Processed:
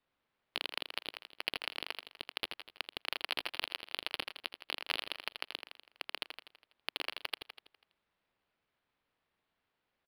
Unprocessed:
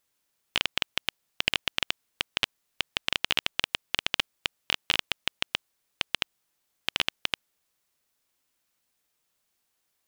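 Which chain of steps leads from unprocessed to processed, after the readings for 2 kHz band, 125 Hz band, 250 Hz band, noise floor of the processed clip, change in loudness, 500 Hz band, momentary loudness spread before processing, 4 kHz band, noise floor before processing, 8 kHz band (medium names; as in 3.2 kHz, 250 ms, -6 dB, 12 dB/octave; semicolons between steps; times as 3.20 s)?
-9.5 dB, -15.0 dB, -10.0 dB, -85 dBFS, -10.0 dB, -6.0 dB, 9 LU, -10.5 dB, -77 dBFS, -13.5 dB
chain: high-pass 310 Hz 24 dB/octave; peaking EQ 1.6 kHz -2.5 dB; on a send: feedback delay 82 ms, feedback 55%, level -7.5 dB; on the sum: decimation joined by straight lines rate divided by 6×; trim -7 dB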